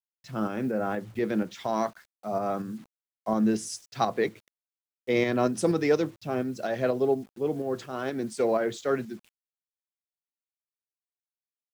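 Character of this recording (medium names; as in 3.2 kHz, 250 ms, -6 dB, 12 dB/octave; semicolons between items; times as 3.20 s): a quantiser's noise floor 10-bit, dither none; tremolo saw up 4.2 Hz, depth 40%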